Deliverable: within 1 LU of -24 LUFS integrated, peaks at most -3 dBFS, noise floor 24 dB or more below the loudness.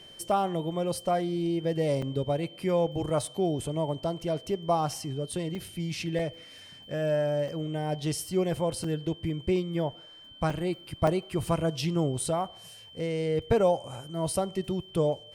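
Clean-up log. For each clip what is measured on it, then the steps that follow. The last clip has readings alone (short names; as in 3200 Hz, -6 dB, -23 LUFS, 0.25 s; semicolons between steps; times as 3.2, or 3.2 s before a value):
dropouts 7; longest dropout 3.3 ms; steady tone 3100 Hz; tone level -48 dBFS; loudness -29.5 LUFS; peak -12.5 dBFS; loudness target -24.0 LUFS
-> interpolate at 2.02/5.55/6.19/7.48/8.84/10.5/11.07, 3.3 ms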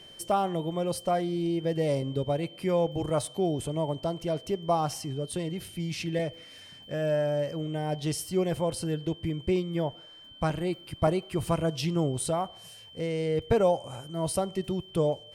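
dropouts 0; steady tone 3100 Hz; tone level -48 dBFS
-> notch 3100 Hz, Q 30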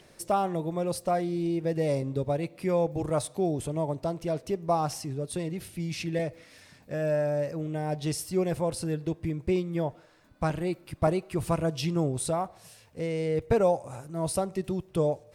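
steady tone none; loudness -30.0 LUFS; peak -12.5 dBFS; loudness target -24.0 LUFS
-> gain +6 dB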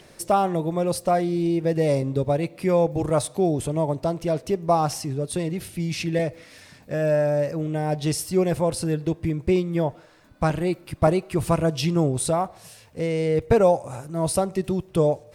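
loudness -24.0 LUFS; peak -6.5 dBFS; noise floor -51 dBFS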